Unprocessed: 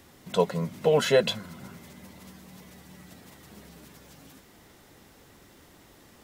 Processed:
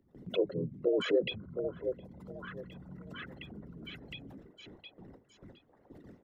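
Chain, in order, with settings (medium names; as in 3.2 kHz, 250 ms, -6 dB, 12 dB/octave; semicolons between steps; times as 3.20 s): resonances exaggerated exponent 3; gate with hold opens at -46 dBFS; on a send: repeats whose band climbs or falls 713 ms, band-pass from 710 Hz, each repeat 0.7 oct, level -6 dB; on the sum: harmony voices -5 st -5 dB; three bands compressed up and down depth 40%; trim -5 dB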